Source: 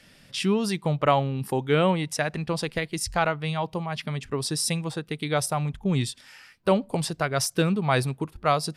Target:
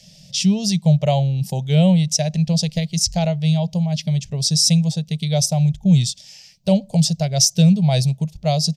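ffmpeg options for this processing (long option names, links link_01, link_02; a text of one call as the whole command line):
ffmpeg -i in.wav -af "firequalizer=gain_entry='entry(100,0);entry(170,10);entry(290,-20);entry(620,1);entry(1200,-28);entry(2100,-10);entry(3100,-1);entry(6100,12);entry(9900,-6);entry(14000,2)':delay=0.05:min_phase=1,volume=5dB" out.wav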